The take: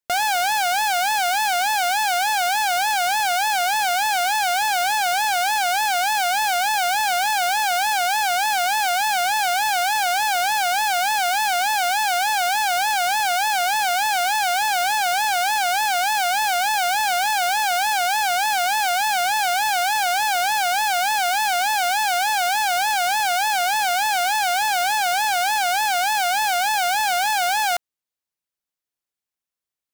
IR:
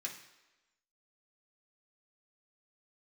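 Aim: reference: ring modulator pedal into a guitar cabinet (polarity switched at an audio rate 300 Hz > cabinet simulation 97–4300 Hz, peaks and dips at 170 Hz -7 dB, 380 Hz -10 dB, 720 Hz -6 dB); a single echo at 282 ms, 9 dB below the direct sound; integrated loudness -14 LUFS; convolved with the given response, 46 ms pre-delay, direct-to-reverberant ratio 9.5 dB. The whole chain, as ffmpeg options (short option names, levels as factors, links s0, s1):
-filter_complex "[0:a]aecho=1:1:282:0.355,asplit=2[s0][s1];[1:a]atrim=start_sample=2205,adelay=46[s2];[s1][s2]afir=irnorm=-1:irlink=0,volume=0.376[s3];[s0][s3]amix=inputs=2:normalize=0,aeval=exprs='val(0)*sgn(sin(2*PI*300*n/s))':c=same,highpass=97,equalizer=f=170:t=q:w=4:g=-7,equalizer=f=380:t=q:w=4:g=-10,equalizer=f=720:t=q:w=4:g=-6,lowpass=f=4300:w=0.5412,lowpass=f=4300:w=1.3066,volume=2.11"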